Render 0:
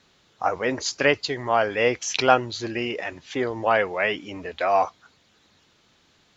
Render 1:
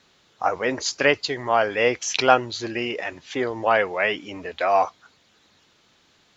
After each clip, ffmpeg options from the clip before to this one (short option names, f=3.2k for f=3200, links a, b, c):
-af "lowshelf=f=210:g=-4.5,volume=1.5dB"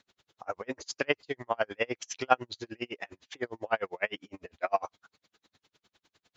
-af "aeval=exprs='val(0)*pow(10,-40*(0.5-0.5*cos(2*PI*9.9*n/s))/20)':c=same,volume=-4dB"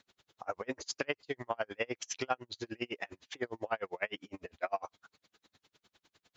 -af "acompressor=threshold=-31dB:ratio=4"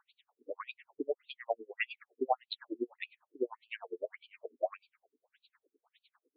-af "afftfilt=real='re*between(b*sr/1024,310*pow(3400/310,0.5+0.5*sin(2*PI*1.7*pts/sr))/1.41,310*pow(3400/310,0.5+0.5*sin(2*PI*1.7*pts/sr))*1.41)':imag='im*between(b*sr/1024,310*pow(3400/310,0.5+0.5*sin(2*PI*1.7*pts/sr))/1.41,310*pow(3400/310,0.5+0.5*sin(2*PI*1.7*pts/sr))*1.41)':win_size=1024:overlap=0.75,volume=5dB"